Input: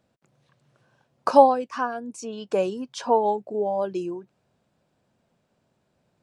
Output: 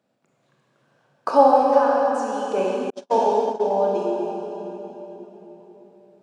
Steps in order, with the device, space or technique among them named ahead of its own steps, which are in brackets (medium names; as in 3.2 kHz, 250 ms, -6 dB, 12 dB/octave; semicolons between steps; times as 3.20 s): swimming-pool hall (reverberation RT60 3.9 s, pre-delay 26 ms, DRR -3.5 dB; treble shelf 3.7 kHz -4 dB); 2.90–3.78 s: gate -19 dBFS, range -49 dB; high-pass 190 Hz 12 dB/octave; trim -1.5 dB